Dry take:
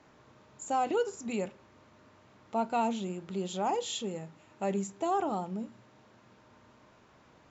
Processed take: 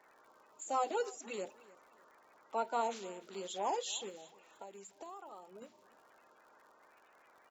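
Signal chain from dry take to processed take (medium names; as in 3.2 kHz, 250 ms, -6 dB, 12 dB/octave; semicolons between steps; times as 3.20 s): coarse spectral quantiser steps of 30 dB; high-pass 470 Hz 12 dB/octave; 4.09–5.62 s: compression 6:1, threshold -46 dBFS, peak gain reduction 17.5 dB; crackle 99 per s -54 dBFS; on a send: feedback delay 299 ms, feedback 30%, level -21.5 dB; on the sum: trim -2.5 dB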